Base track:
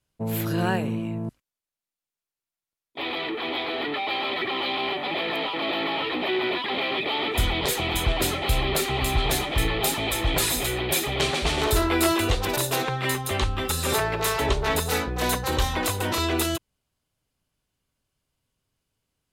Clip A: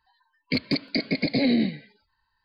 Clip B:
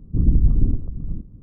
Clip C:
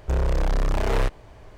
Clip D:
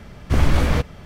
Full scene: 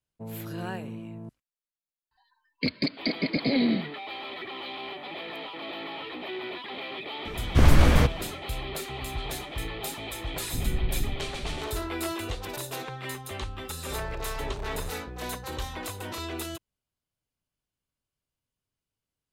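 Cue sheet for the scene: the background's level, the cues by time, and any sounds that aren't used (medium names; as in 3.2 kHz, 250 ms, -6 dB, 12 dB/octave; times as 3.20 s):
base track -10.5 dB
2.11 s: add A -2.5 dB
7.25 s: add D -0.5 dB
10.39 s: add B -12 dB
13.82 s: add C -15.5 dB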